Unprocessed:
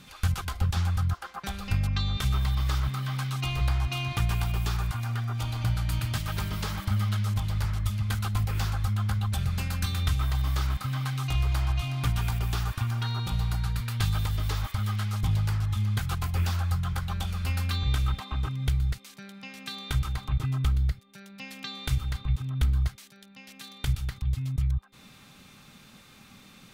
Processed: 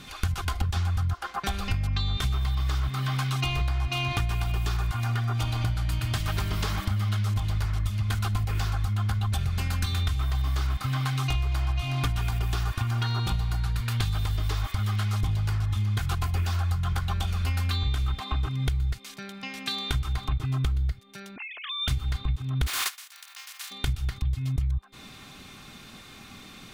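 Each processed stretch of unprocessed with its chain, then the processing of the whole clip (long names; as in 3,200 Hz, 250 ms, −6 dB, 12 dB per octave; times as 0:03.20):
0:21.36–0:21.88: three sine waves on the formant tracks + downward compressor 1.5 to 1, threshold −42 dBFS
0:22.66–0:23.70: compressing power law on the bin magnitudes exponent 0.32 + high-pass filter 1,000 Hz 24 dB per octave + hard clipping −25.5 dBFS
whole clip: high-shelf EQ 9,000 Hz −5 dB; comb filter 2.8 ms, depth 34%; downward compressor, threshold −30 dBFS; level +6.5 dB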